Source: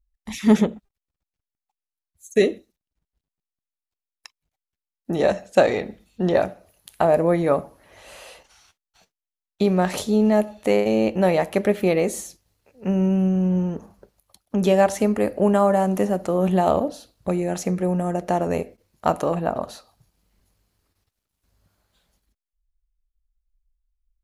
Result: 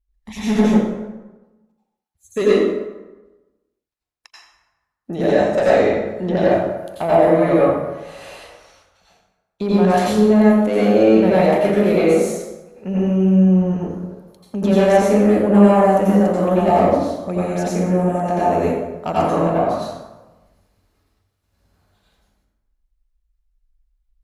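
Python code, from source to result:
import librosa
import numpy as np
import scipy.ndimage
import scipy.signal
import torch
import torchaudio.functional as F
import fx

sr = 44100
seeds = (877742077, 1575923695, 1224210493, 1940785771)

y = fx.cheby_harmonics(x, sr, harmonics=(5,), levels_db=(-13,), full_scale_db=-2.5)
y = fx.high_shelf(y, sr, hz=5900.0, db=-7.0)
y = fx.rev_plate(y, sr, seeds[0], rt60_s=1.1, hf_ratio=0.6, predelay_ms=75, drr_db=-8.0)
y = y * librosa.db_to_amplitude(-8.5)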